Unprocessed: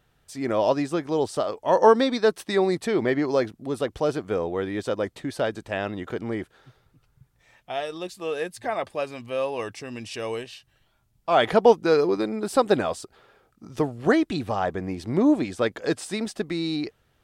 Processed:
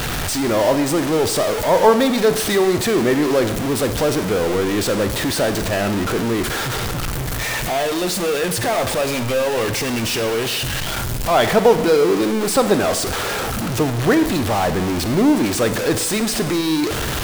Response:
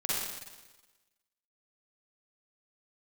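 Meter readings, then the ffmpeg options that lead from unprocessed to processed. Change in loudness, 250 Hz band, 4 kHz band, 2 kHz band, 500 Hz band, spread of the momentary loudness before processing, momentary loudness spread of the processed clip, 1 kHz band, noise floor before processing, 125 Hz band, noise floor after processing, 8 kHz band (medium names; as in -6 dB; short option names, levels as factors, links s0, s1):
+6.5 dB, +7.5 dB, +12.5 dB, +9.5 dB, +5.5 dB, 13 LU, 7 LU, +5.5 dB, -67 dBFS, +11.5 dB, -23 dBFS, +19.0 dB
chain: -filter_complex "[0:a]aeval=exprs='val(0)+0.5*0.119*sgn(val(0))':c=same,asplit=2[s0][s1];[1:a]atrim=start_sample=2205,asetrate=52920,aresample=44100[s2];[s1][s2]afir=irnorm=-1:irlink=0,volume=0.211[s3];[s0][s3]amix=inputs=2:normalize=0"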